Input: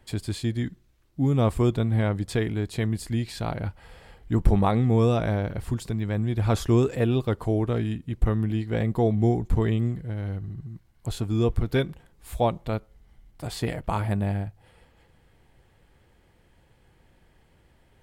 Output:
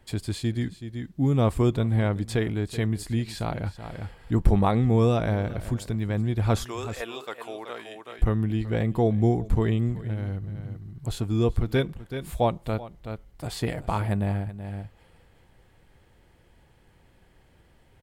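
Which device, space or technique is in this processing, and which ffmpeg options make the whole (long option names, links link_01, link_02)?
ducked delay: -filter_complex "[0:a]asettb=1/sr,asplit=3[link_01][link_02][link_03];[link_01]atrim=end=6.644[link_04];[link_02]atrim=start=6.64:end=8.19,asetpts=PTS-STARTPTS,afade=type=in:duration=0.004:curve=qsin,afade=type=out:start_time=1.546:duration=0.004:curve=qsin,highpass=800[link_05];[link_03]atrim=start=8.186[link_06];[link_04][link_05]acrossfade=duration=0.004:curve1=hsin:curve2=qsin[link_07];[link_07][link_06]acrossfade=duration=0.004:curve1=qsin:curve2=hsin,asplit=3[link_08][link_09][link_10];[link_09]adelay=378,volume=-4.5dB[link_11];[link_10]apad=whole_len=811396[link_12];[link_11][link_12]sidechaincompress=threshold=-37dB:ratio=12:attack=32:release=401[link_13];[link_08][link_13]amix=inputs=2:normalize=0"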